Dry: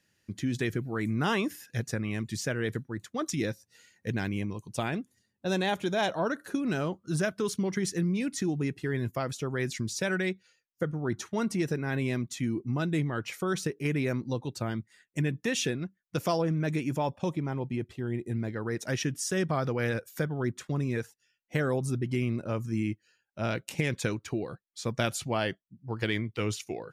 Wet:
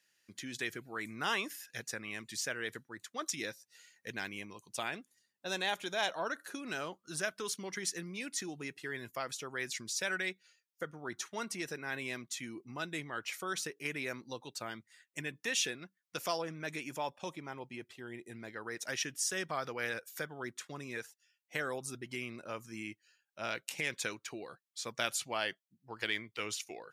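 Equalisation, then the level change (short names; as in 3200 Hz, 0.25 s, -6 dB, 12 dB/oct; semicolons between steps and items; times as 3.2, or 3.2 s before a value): HPF 1400 Hz 6 dB/oct; 0.0 dB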